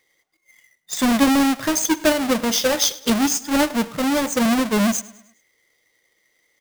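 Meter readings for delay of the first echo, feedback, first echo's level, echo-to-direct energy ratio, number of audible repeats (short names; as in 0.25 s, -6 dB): 0.103 s, 47%, -20.0 dB, -19.0 dB, 3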